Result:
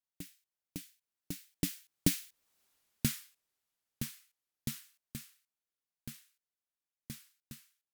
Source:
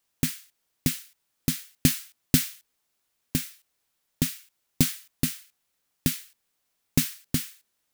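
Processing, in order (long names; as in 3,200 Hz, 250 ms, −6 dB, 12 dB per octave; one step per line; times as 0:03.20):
source passing by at 0:02.64, 41 m/s, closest 9.4 metres
level +1.5 dB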